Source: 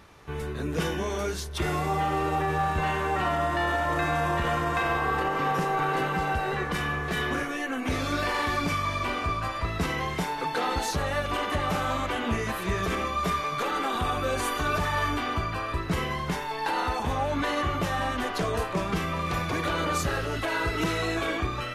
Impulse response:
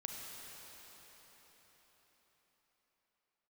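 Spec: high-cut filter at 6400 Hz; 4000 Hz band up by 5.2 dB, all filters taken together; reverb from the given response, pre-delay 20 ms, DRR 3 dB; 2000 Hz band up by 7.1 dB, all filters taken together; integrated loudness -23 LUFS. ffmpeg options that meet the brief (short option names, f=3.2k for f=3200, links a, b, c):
-filter_complex "[0:a]lowpass=6.4k,equalizer=f=2k:t=o:g=8,equalizer=f=4k:t=o:g=4,asplit=2[a][b];[1:a]atrim=start_sample=2205,adelay=20[c];[b][c]afir=irnorm=-1:irlink=0,volume=-2dB[d];[a][d]amix=inputs=2:normalize=0"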